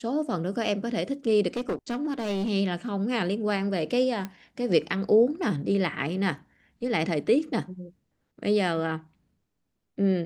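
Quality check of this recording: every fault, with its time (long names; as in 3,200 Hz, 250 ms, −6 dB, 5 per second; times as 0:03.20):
0:01.48–0:02.50: clipping −24.5 dBFS
0:04.25: click −19 dBFS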